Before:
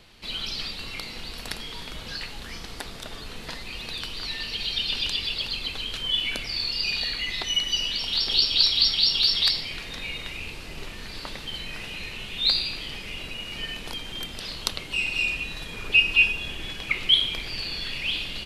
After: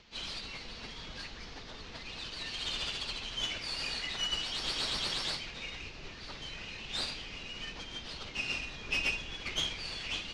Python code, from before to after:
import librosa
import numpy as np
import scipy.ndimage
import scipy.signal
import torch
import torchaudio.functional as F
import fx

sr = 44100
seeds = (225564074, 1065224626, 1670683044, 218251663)

y = fx.cvsd(x, sr, bps=32000)
y = fx.tube_stage(y, sr, drive_db=19.0, bias=0.75)
y = fx.stretch_vocoder_free(y, sr, factor=0.56)